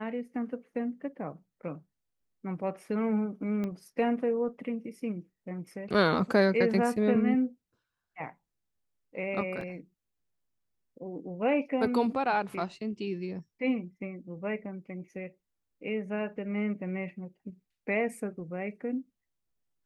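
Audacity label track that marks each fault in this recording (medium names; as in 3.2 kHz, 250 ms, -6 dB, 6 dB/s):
3.640000	3.640000	pop -23 dBFS
9.610000	9.610000	dropout 2.5 ms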